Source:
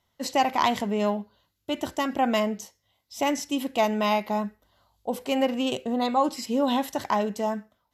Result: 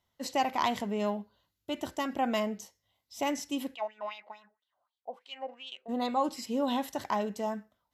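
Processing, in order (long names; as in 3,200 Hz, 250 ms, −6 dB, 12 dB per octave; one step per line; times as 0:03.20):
0:03.74–0:05.88: LFO wah 5.4 Hz → 2.1 Hz 640–3,700 Hz, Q 4.2
level −6 dB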